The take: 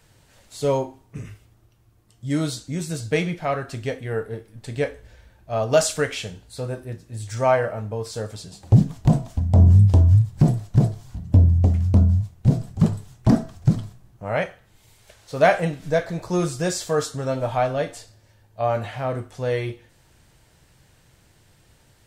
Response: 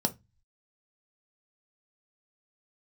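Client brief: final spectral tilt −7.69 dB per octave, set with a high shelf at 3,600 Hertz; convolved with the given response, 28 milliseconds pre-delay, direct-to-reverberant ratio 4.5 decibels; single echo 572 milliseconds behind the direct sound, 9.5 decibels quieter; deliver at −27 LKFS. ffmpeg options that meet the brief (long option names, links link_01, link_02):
-filter_complex "[0:a]highshelf=frequency=3600:gain=-6,aecho=1:1:572:0.335,asplit=2[link_01][link_02];[1:a]atrim=start_sample=2205,adelay=28[link_03];[link_02][link_03]afir=irnorm=-1:irlink=0,volume=-11dB[link_04];[link_01][link_04]amix=inputs=2:normalize=0,volume=-8.5dB"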